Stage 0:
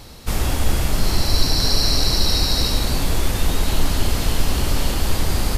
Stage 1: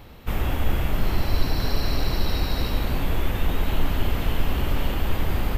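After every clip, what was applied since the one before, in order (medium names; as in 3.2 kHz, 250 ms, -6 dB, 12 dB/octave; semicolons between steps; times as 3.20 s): high-order bell 6.8 kHz -14.5 dB; trim -3.5 dB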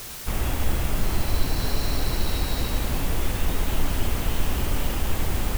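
word length cut 6-bit, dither triangular; trim -1.5 dB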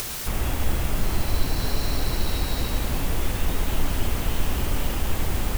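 upward compressor, threshold -24 dBFS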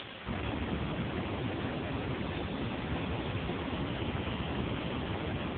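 AMR-NB 5.15 kbps 8 kHz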